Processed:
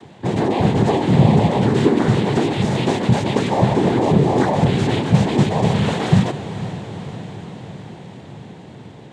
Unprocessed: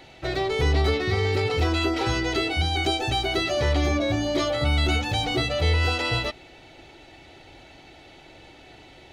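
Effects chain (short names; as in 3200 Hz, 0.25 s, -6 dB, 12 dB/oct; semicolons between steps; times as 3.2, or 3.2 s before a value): tilt -4 dB/oct; noise vocoder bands 6; diffused feedback echo 0.48 s, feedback 67%, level -13 dB; gain +3 dB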